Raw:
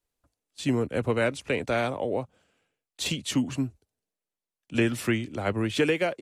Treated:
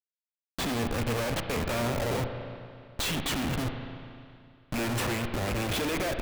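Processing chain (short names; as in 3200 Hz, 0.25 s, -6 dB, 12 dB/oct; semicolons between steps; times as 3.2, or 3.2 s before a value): rattling part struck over -29 dBFS, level -20 dBFS; Schmitt trigger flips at -35.5 dBFS; spring tank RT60 2.4 s, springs 34/56 ms, chirp 25 ms, DRR 5.5 dB; gain -1 dB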